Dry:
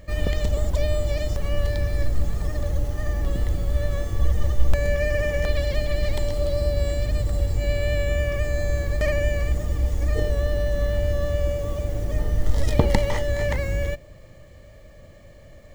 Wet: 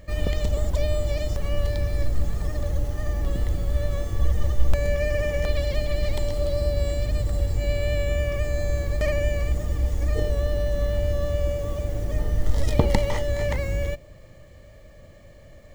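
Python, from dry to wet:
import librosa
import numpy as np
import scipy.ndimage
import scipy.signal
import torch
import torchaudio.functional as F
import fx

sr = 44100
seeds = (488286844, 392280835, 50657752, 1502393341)

y = fx.dynamic_eq(x, sr, hz=1700.0, q=5.5, threshold_db=-47.0, ratio=4.0, max_db=-4)
y = y * 10.0 ** (-1.0 / 20.0)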